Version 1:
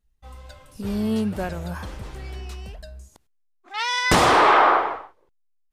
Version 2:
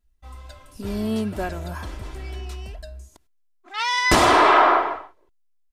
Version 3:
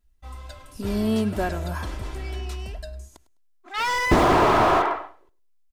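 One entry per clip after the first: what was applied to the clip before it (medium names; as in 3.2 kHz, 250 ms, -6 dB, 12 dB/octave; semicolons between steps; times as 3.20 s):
comb 3 ms, depth 44%
feedback delay 103 ms, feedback 20%, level -18.5 dB; slew-rate limiter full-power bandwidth 110 Hz; trim +2 dB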